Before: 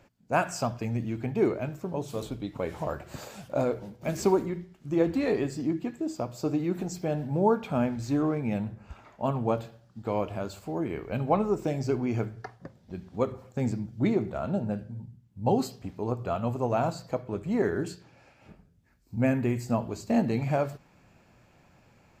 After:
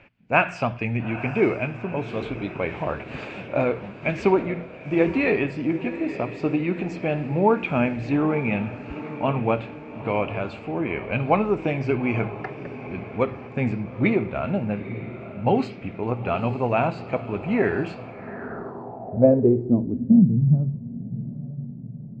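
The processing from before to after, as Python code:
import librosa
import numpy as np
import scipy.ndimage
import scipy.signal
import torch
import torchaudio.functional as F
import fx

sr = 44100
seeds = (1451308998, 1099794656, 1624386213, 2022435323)

y = fx.echo_diffused(x, sr, ms=880, feedback_pct=56, wet_db=-13)
y = fx.filter_sweep_lowpass(y, sr, from_hz=2500.0, to_hz=170.0, start_s=18.02, end_s=20.29, q=4.4)
y = y * 10.0 ** (4.0 / 20.0)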